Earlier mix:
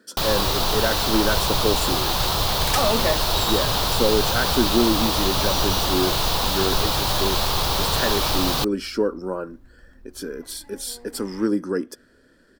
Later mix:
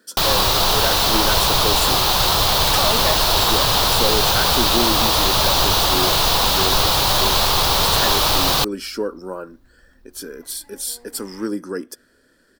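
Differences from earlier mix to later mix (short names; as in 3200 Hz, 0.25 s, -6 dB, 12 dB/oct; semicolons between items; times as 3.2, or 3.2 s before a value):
speech: add high shelf 7800 Hz +9.5 dB; first sound +6.5 dB; master: add low shelf 430 Hz -5 dB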